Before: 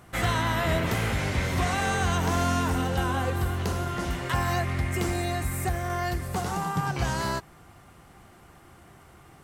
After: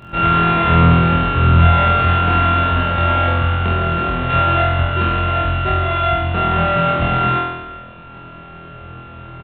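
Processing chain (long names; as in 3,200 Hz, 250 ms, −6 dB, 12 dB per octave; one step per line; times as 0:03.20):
samples sorted by size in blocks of 32 samples
in parallel at +1 dB: downward compressor, threshold −36 dBFS, peak gain reduction 14 dB
on the sum: downsampling to 8,000 Hz
flutter between parallel walls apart 4.1 metres, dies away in 1.1 s
level +4 dB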